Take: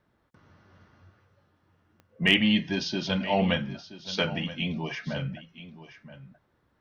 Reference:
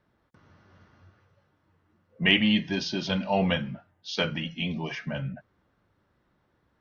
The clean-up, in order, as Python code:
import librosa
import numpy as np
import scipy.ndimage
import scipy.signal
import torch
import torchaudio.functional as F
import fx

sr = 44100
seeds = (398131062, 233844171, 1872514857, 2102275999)

y = fx.fix_declip(x, sr, threshold_db=-8.5)
y = fx.fix_declick_ar(y, sr, threshold=10.0)
y = fx.fix_echo_inverse(y, sr, delay_ms=976, level_db=-15.0)